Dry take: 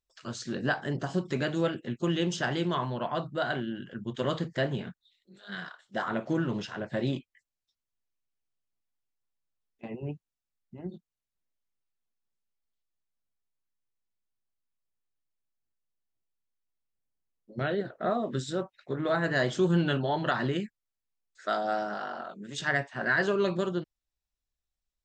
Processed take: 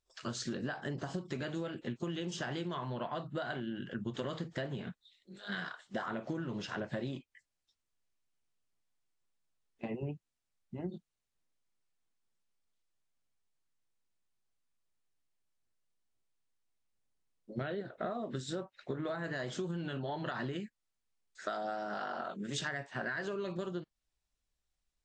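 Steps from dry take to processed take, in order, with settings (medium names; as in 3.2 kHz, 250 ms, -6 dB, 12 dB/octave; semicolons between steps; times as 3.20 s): peak limiter -19 dBFS, peak gain reduction 4.5 dB; compression 16:1, threshold -37 dBFS, peak gain reduction 14.5 dB; trim +3 dB; AAC 48 kbps 22.05 kHz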